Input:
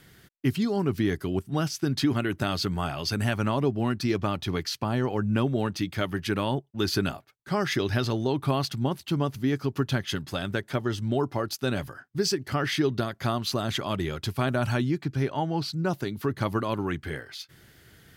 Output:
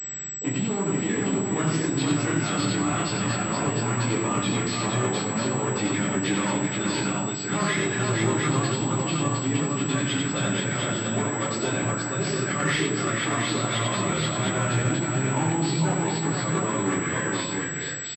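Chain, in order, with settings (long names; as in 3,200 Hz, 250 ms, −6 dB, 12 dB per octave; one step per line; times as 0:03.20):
mains-hum notches 50/100/150/200/250/300/350 Hz
downward compressor 8 to 1, threshold −27 dBFS, peak gain reduction 8 dB
pitch-shifted copies added +7 semitones −16 dB
brickwall limiter −23 dBFS, peak gain reduction 6.5 dB
soft clipping −30 dBFS, distortion −13 dB
multi-tap delay 90/471/705 ms −4/−3.5/−4 dB
convolution reverb RT60 1.0 s, pre-delay 13 ms, DRR −2.5 dB
switching amplifier with a slow clock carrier 7,800 Hz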